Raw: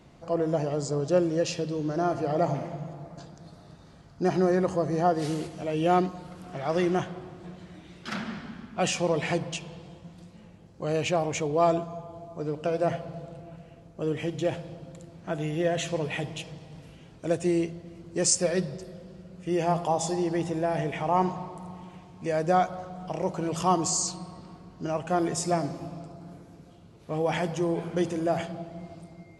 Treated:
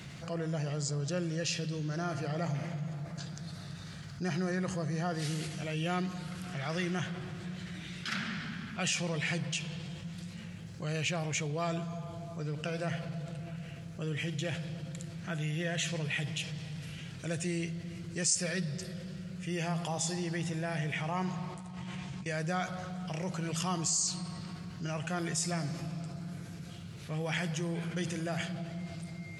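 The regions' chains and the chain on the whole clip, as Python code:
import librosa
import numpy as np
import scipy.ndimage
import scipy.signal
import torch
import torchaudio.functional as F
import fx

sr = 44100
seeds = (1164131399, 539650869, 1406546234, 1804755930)

y = fx.chain(x, sr, fx.lowpass(hz=9600.0, slope=24),
    fx.doubler(ms=15.0, db=-3.5),
    fx.over_compress(threshold_db=-44.0, ratio=-0.5), at=(21.54, 22.26))
y = scipy.signal.sosfilt(scipy.signal.butter(2, 110.0, 'highpass', fs=sr, output='sos'), y)
y = fx.band_shelf(y, sr, hz=500.0, db=-13.0, octaves=2.6)
y = fx.env_flatten(y, sr, amount_pct=50)
y = y * 10.0 ** (-6.0 / 20.0)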